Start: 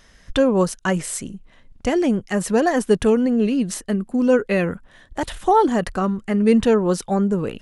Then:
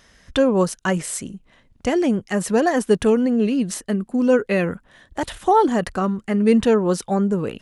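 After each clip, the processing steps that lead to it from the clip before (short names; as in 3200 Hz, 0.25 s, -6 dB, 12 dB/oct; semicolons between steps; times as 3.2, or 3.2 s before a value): HPF 61 Hz 6 dB/oct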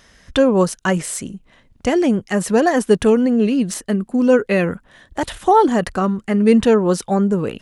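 de-esser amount 40%; gain +3 dB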